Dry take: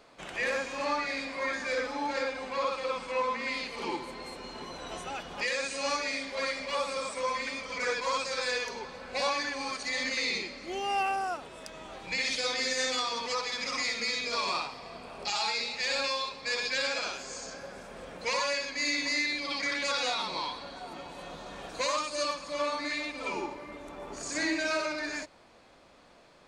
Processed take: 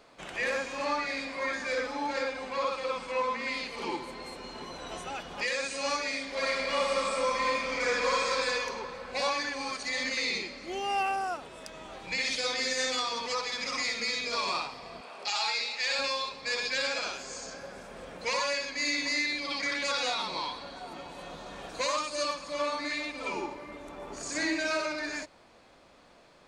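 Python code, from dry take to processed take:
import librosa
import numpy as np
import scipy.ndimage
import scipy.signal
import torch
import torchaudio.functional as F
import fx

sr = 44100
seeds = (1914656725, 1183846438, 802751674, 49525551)

y = fx.reverb_throw(x, sr, start_s=6.26, length_s=2.04, rt60_s=2.7, drr_db=-1.5)
y = fx.weighting(y, sr, curve='A', at=(15.01, 15.99))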